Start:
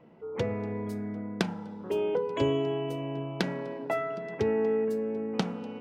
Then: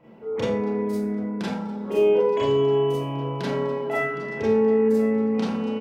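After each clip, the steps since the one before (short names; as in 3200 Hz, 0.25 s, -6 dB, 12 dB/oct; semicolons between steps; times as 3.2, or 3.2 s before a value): limiter -22.5 dBFS, peak gain reduction 10.5 dB; echo 1.062 s -16 dB; Schroeder reverb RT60 0.35 s, combs from 28 ms, DRR -7 dB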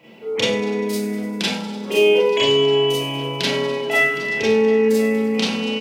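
HPF 210 Hz 6 dB/oct; resonant high shelf 1900 Hz +11 dB, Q 1.5; thin delay 99 ms, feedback 68%, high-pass 4400 Hz, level -13 dB; gain +5 dB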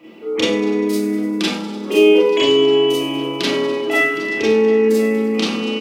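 bell 130 Hz -7.5 dB 0.53 oct; small resonant body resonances 320/1200 Hz, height 17 dB, ringing for 85 ms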